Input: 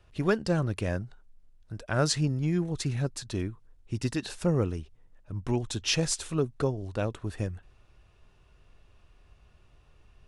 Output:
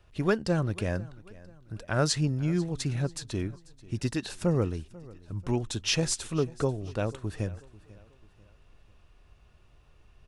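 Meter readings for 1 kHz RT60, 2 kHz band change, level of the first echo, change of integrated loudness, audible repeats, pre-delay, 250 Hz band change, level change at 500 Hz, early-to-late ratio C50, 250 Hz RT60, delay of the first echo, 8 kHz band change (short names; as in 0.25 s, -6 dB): none, 0.0 dB, -21.0 dB, 0.0 dB, 2, none, 0.0 dB, 0.0 dB, none, none, 0.491 s, 0.0 dB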